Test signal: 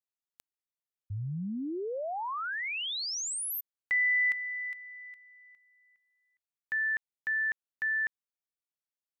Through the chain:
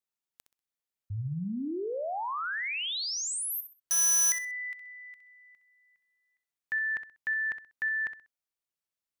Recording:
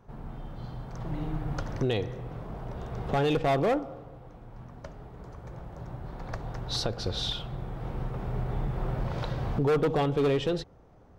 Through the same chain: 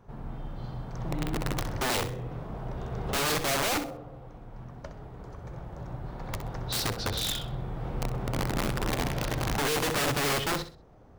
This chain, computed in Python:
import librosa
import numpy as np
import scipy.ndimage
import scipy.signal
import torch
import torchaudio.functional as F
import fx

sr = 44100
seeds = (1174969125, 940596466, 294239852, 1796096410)

y = (np.mod(10.0 ** (24.0 / 20.0) * x + 1.0, 2.0) - 1.0) / 10.0 ** (24.0 / 20.0)
y = fx.echo_feedback(y, sr, ms=64, feedback_pct=27, wet_db=-11.0)
y = y * 10.0 ** (1.0 / 20.0)